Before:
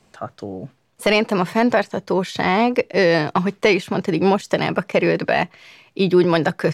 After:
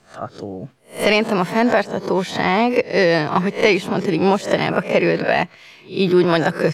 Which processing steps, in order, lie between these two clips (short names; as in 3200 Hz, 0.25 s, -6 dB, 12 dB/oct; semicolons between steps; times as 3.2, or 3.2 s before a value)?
spectral swells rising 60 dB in 0.31 s